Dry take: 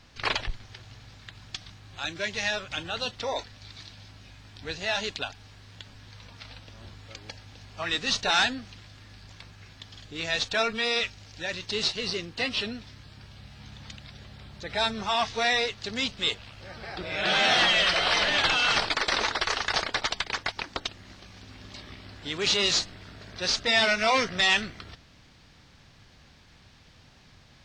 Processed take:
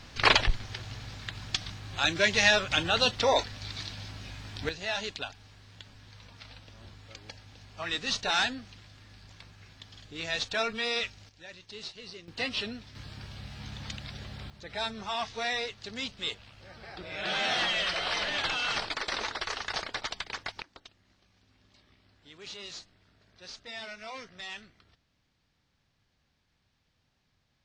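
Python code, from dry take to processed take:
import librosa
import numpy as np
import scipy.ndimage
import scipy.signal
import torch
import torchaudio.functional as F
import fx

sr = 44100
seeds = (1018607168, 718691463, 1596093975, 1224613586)

y = fx.gain(x, sr, db=fx.steps((0.0, 6.5), (4.69, -4.0), (11.29, -14.5), (12.28, -3.5), (12.95, 4.0), (14.5, -7.0), (20.62, -19.0)))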